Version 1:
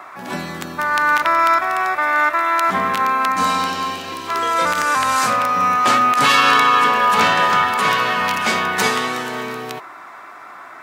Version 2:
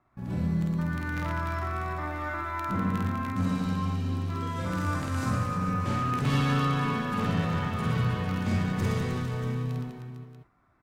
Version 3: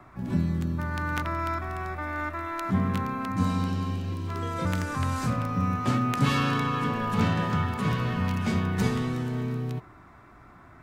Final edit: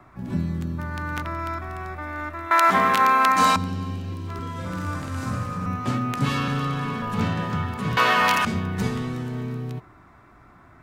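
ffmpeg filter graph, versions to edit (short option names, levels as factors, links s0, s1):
-filter_complex "[0:a]asplit=2[s0][s1];[1:a]asplit=2[s2][s3];[2:a]asplit=5[s4][s5][s6][s7][s8];[s4]atrim=end=2.512[s9];[s0]atrim=start=2.508:end=3.562[s10];[s5]atrim=start=3.558:end=4.392[s11];[s2]atrim=start=4.388:end=5.662[s12];[s6]atrim=start=5.658:end=6.482[s13];[s3]atrim=start=6.478:end=7.022[s14];[s7]atrim=start=7.018:end=7.972[s15];[s1]atrim=start=7.968:end=8.452[s16];[s8]atrim=start=8.448[s17];[s9][s10]acrossfade=d=0.004:c1=hsin:c2=hsin[s18];[s18][s11]acrossfade=d=0.004:c1=hsin:c2=hsin[s19];[s19][s12]acrossfade=d=0.004:c1=hsin:c2=hsin[s20];[s20][s13]acrossfade=d=0.004:c1=hsin:c2=hsin[s21];[s21][s14]acrossfade=d=0.004:c1=hsin:c2=hsin[s22];[s22][s15]acrossfade=d=0.004:c1=hsin:c2=hsin[s23];[s23][s16]acrossfade=d=0.004:c1=hsin:c2=hsin[s24];[s24][s17]acrossfade=d=0.004:c1=hsin:c2=hsin"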